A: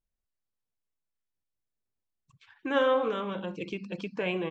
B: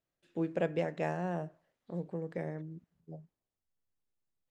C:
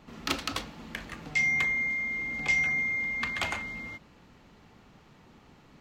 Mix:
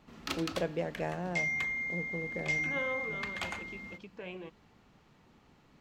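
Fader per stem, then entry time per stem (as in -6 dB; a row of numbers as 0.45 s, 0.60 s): -13.0 dB, -1.5 dB, -6.5 dB; 0.00 s, 0.00 s, 0.00 s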